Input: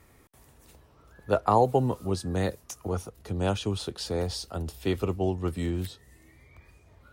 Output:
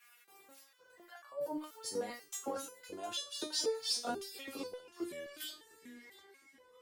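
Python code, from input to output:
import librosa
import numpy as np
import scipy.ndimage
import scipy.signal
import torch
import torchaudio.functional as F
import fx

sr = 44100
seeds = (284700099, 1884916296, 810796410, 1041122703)

p1 = fx.speed_glide(x, sr, from_pct=122, to_pct=87)
p2 = fx.over_compress(p1, sr, threshold_db=-31.0, ratio=-1.0)
p3 = fx.cheby_harmonics(p2, sr, harmonics=(7,), levels_db=(-33,), full_scale_db=-16.5)
p4 = fx.filter_lfo_highpass(p3, sr, shape='square', hz=1.9, low_hz=320.0, high_hz=1700.0, q=0.99)
p5 = p4 + fx.echo_feedback(p4, sr, ms=709, feedback_pct=29, wet_db=-18, dry=0)
p6 = fx.resonator_held(p5, sr, hz=4.1, low_hz=240.0, high_hz=570.0)
y = p6 * 10.0 ** (11.5 / 20.0)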